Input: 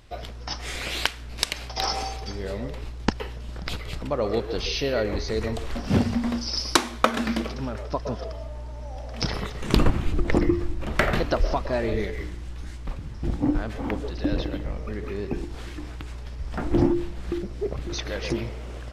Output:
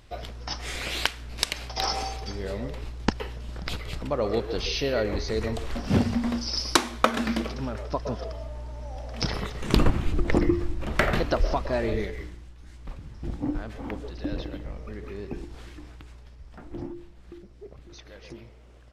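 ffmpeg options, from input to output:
ffmpeg -i in.wav -af "volume=6dB,afade=type=out:start_time=11.9:duration=0.67:silence=0.251189,afade=type=in:start_time=12.57:duration=0.34:silence=0.446684,afade=type=out:start_time=15.5:duration=1.12:silence=0.316228" out.wav

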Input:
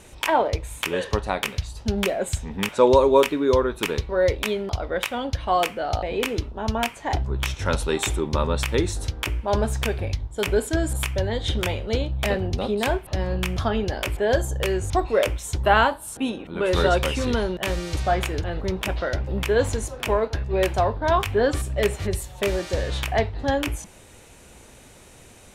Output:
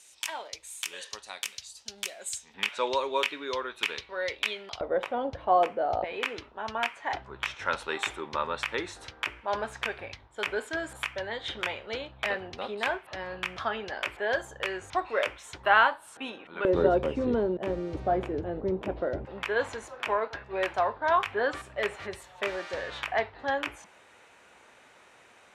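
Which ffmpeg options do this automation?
ffmpeg -i in.wav -af "asetnsamples=nb_out_samples=441:pad=0,asendcmd='2.54 bandpass f 2700;4.81 bandpass f 600;6.04 bandpass f 1600;16.65 bandpass f 370;19.25 bandpass f 1400',bandpass=frequency=6800:width_type=q:width=0.98:csg=0" out.wav

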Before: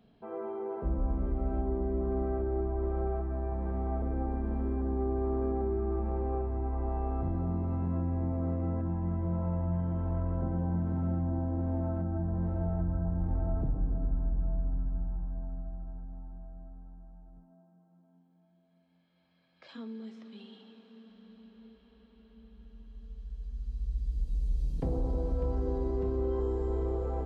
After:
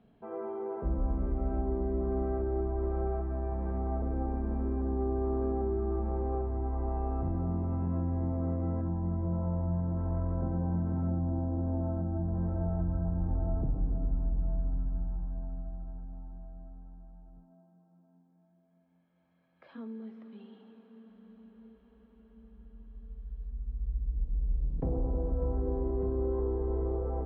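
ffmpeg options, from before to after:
ffmpeg -i in.wav -af "asetnsamples=nb_out_samples=441:pad=0,asendcmd='3.78 lowpass f 1800;8.89 lowpass f 1200;9.97 lowpass f 1600;11.1 lowpass f 1100;12.35 lowpass f 1600;13.31 lowpass f 1200;14.49 lowpass f 1700;23.5 lowpass f 1200',lowpass=2500" out.wav

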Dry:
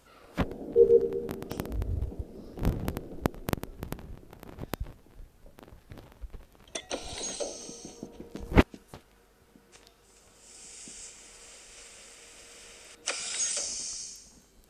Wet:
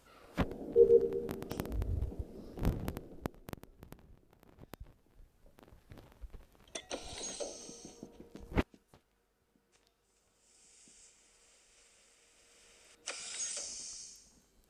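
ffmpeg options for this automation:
ffmpeg -i in.wav -af "volume=10.5dB,afade=type=out:start_time=2.58:duration=0.86:silence=0.281838,afade=type=in:start_time=4.75:duration=1.25:silence=0.375837,afade=type=out:start_time=7.84:duration=1.01:silence=0.375837,afade=type=in:start_time=12.33:duration=0.89:silence=0.501187" out.wav

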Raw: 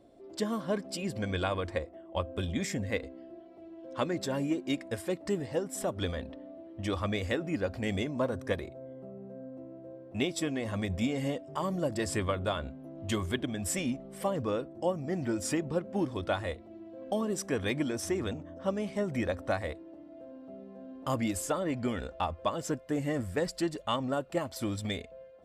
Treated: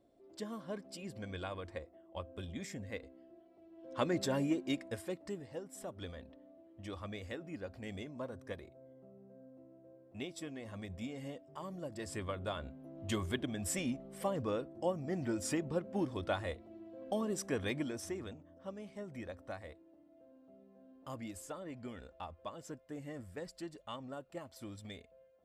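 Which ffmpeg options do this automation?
ffmpeg -i in.wav -af "volume=7.5dB,afade=type=in:start_time=3.7:duration=0.46:silence=0.298538,afade=type=out:start_time=4.16:duration=1.24:silence=0.251189,afade=type=in:start_time=11.9:duration=1.22:silence=0.398107,afade=type=out:start_time=17.54:duration=0.86:silence=0.334965" out.wav

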